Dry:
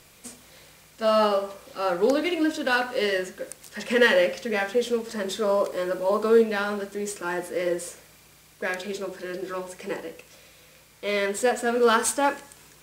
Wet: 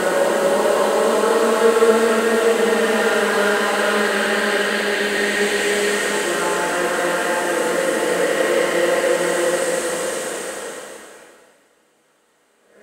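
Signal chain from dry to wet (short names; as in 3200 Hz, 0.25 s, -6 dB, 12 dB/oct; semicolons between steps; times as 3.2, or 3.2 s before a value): per-bin compression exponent 0.4; gate -22 dBFS, range -32 dB; spectral gain 6.76–7.1, 1500–4900 Hz +8 dB; Paulstretch 5.2×, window 0.50 s, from 5.96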